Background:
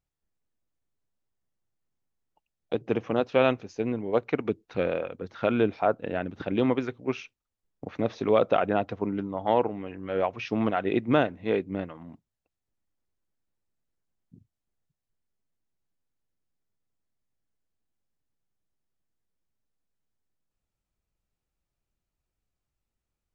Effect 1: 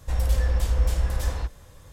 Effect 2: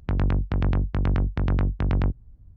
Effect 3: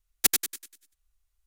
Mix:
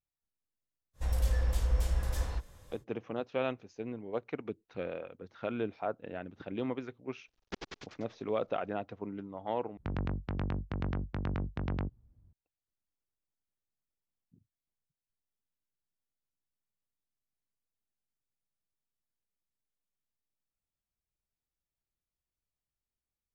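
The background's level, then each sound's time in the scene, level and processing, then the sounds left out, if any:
background -11 dB
0.93 add 1 -7 dB, fades 0.10 s
7.28 add 3 -3.5 dB + CVSD 32 kbps
9.77 replace with 2 -8 dB + HPF 100 Hz 6 dB/oct

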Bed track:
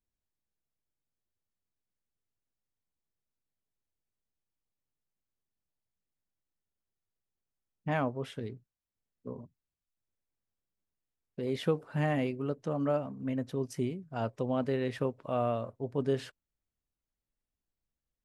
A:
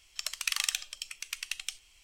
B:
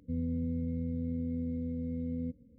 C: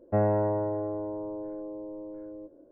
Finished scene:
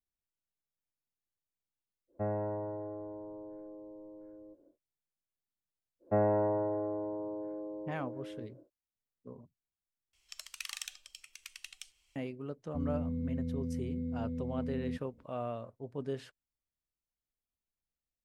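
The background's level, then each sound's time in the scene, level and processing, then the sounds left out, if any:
bed track -7.5 dB
2.07 add C -10 dB, fades 0.10 s
5.99 add C -2.5 dB, fades 0.10 s + HPF 140 Hz 6 dB/oct
10.13 replace with A -11.5 dB
12.66 add B -2 dB

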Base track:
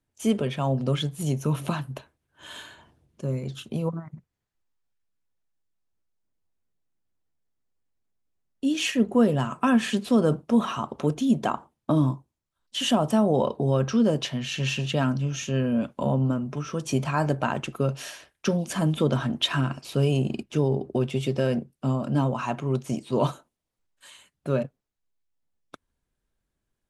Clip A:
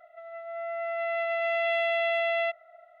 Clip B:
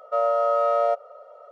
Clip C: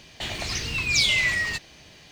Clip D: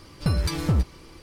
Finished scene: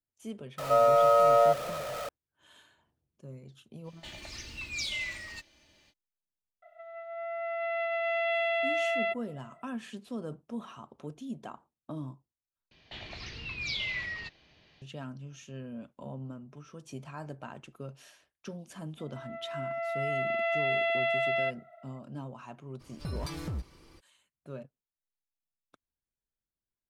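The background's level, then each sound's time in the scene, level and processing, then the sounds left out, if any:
base track -17.5 dB
0.58 add B -1 dB + zero-crossing step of -32 dBFS
3.83 add C -15 dB, fades 0.05 s + comb 3.4 ms, depth 50%
6.62 add A -2.5 dB
12.71 replace with C -12 dB + LPF 4600 Hz 24 dB/oct
18.99 add A -2 dB
22.79 add D -10 dB, fades 0.02 s + compressor, threshold -22 dBFS

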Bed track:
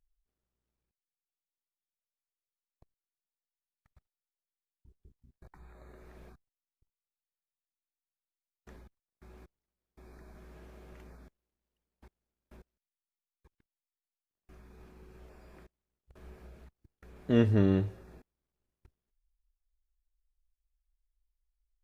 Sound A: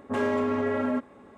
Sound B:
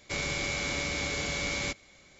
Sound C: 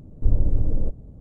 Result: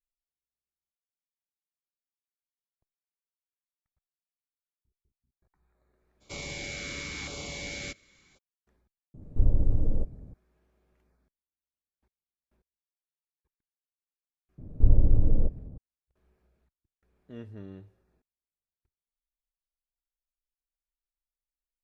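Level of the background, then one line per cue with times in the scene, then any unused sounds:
bed track -19 dB
6.2 add B -5 dB, fades 0.02 s + LFO notch saw down 0.93 Hz 530–2000 Hz
9.14 add C -3.5 dB + downsampling 22050 Hz
14.58 add C + air absorption 470 m
not used: A

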